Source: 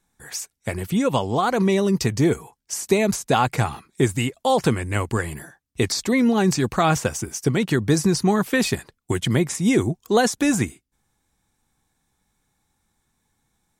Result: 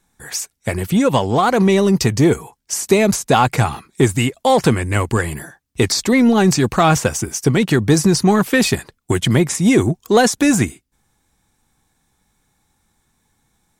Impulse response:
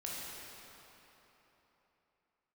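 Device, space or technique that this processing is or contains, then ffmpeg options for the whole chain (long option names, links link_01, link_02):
parallel distortion: -filter_complex "[0:a]asplit=2[link_01][link_02];[link_02]asoftclip=type=hard:threshold=-18.5dB,volume=-8dB[link_03];[link_01][link_03]amix=inputs=2:normalize=0,volume=3.5dB"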